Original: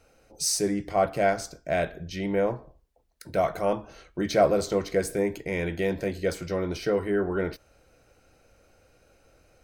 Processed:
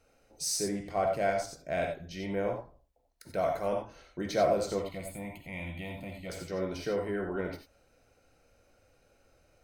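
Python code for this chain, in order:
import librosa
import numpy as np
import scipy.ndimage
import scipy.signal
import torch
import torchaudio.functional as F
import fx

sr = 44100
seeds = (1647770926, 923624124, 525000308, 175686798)

y = fx.fixed_phaser(x, sr, hz=1600.0, stages=6, at=(4.79, 6.3))
y = fx.rev_gated(y, sr, seeds[0], gate_ms=110, shape='rising', drr_db=3.5)
y = y * 10.0 ** (-7.0 / 20.0)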